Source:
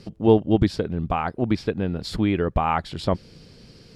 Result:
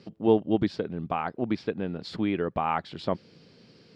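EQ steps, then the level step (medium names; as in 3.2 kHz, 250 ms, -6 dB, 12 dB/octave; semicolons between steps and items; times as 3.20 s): band-pass 160–4600 Hz; -4.5 dB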